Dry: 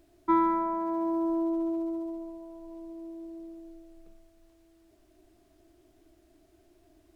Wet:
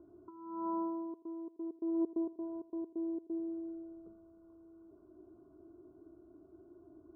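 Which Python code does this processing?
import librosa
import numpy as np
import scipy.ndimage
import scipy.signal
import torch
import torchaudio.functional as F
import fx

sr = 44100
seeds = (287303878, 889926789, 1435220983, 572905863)

y = scipy.signal.sosfilt(scipy.signal.butter(2, 100.0, 'highpass', fs=sr, output='sos'), x)
y = fx.low_shelf(y, sr, hz=250.0, db=10.0)
y = fx.over_compress(y, sr, threshold_db=-31.0, ratio=-0.5)
y = fx.step_gate(y, sr, bpm=132, pattern='.xx.x.xx.x', floor_db=-60.0, edge_ms=4.5, at=(1.1, 3.39), fade=0.02)
y = scipy.signal.sosfilt(scipy.signal.cheby1(6, 9, 1500.0, 'lowpass', fs=sr, output='sos'), y)
y = fx.echo_feedback(y, sr, ms=83, feedback_pct=35, wet_db=-17)
y = F.gain(torch.from_numpy(y), -1.5).numpy()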